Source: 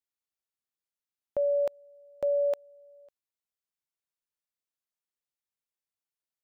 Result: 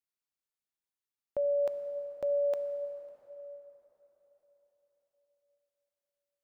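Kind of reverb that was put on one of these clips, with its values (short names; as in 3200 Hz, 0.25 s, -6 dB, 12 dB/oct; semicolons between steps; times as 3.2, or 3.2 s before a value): plate-style reverb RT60 4.4 s, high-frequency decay 0.65×, DRR 8 dB; gain -3.5 dB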